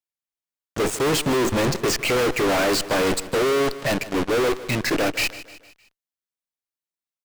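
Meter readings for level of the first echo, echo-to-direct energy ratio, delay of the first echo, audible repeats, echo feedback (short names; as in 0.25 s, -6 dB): -16.0 dB, -15.0 dB, 0.153 s, 3, 48%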